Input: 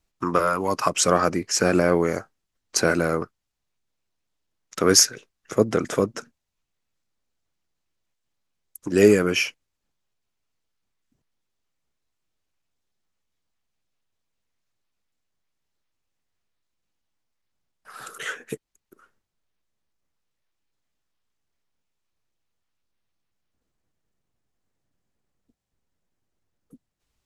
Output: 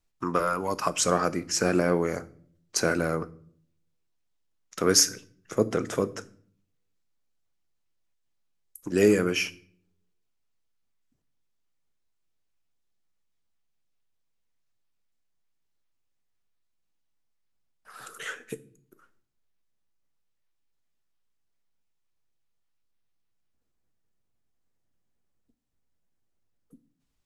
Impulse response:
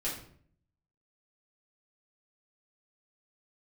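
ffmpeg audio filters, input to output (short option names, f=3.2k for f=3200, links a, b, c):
-filter_complex "[0:a]asplit=2[a][b];[b]highshelf=f=4.8k:g=10[c];[1:a]atrim=start_sample=2205,lowshelf=f=320:g=6.5[d];[c][d]afir=irnorm=-1:irlink=0,volume=-19dB[e];[a][e]amix=inputs=2:normalize=0,volume=-5.5dB"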